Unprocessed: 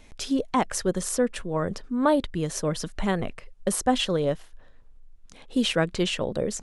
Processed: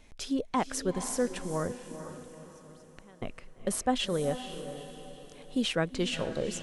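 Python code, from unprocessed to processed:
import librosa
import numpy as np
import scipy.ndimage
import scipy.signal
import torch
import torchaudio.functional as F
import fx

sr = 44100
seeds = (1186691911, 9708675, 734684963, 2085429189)

y = fx.gate_flip(x, sr, shuts_db=-25.0, range_db=-25, at=(1.71, 3.22))
y = fx.echo_diffused(y, sr, ms=460, feedback_pct=44, wet_db=-10.5)
y = y * librosa.db_to_amplitude(-5.5)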